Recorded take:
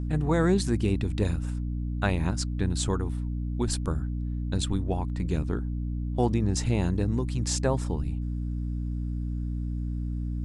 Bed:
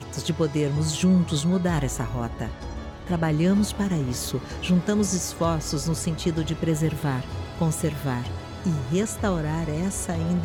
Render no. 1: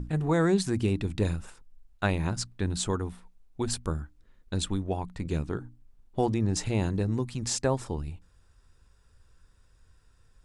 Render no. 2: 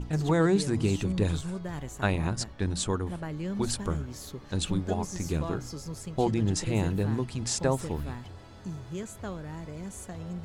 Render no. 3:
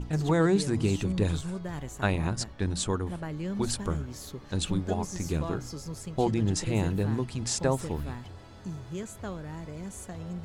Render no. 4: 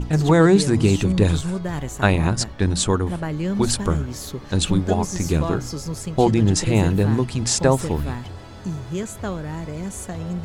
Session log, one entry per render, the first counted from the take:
mains-hum notches 60/120/180/240/300 Hz
mix in bed −13 dB
no processing that can be heard
level +9.5 dB

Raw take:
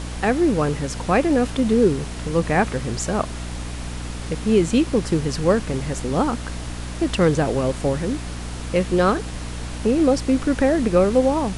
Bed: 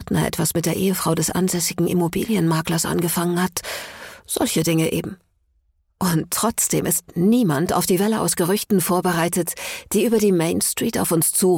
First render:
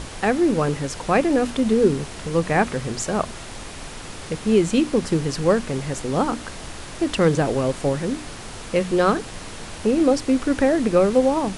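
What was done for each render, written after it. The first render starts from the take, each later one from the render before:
mains-hum notches 60/120/180/240/300 Hz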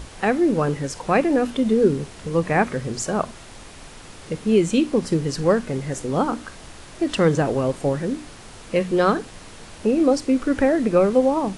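noise reduction from a noise print 6 dB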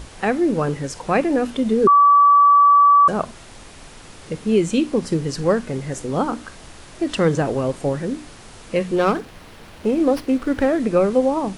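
0:01.87–0:03.08: beep over 1,150 Hz −8.5 dBFS
0:08.96–0:10.80: windowed peak hold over 5 samples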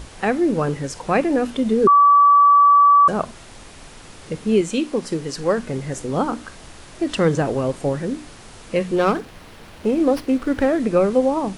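0:04.61–0:05.58: parametric band 64 Hz −12.5 dB 2.8 octaves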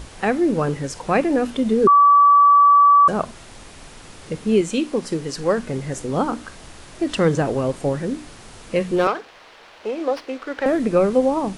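0:09.07–0:10.66: three-way crossover with the lows and the highs turned down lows −21 dB, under 420 Hz, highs −16 dB, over 6,500 Hz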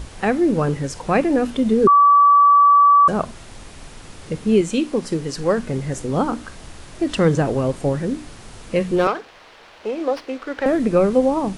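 low-shelf EQ 190 Hz +5 dB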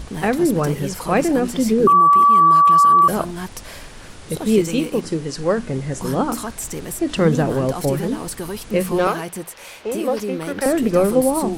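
mix in bed −9.5 dB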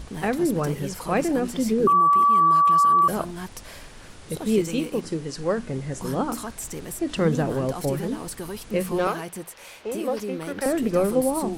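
level −5.5 dB

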